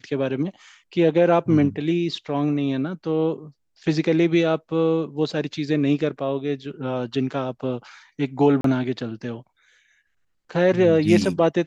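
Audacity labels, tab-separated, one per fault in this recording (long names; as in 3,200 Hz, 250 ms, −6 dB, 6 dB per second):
8.610000	8.640000	drop-out 33 ms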